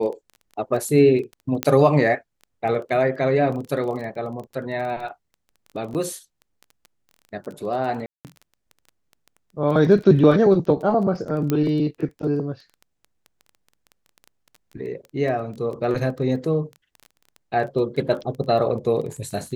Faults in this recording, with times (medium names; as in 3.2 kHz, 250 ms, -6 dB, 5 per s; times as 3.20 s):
crackle 14 per s -31 dBFS
1.63 s: pop -5 dBFS
5.94–5.95 s: dropout 8.3 ms
8.06–8.25 s: dropout 188 ms
11.50 s: pop -9 dBFS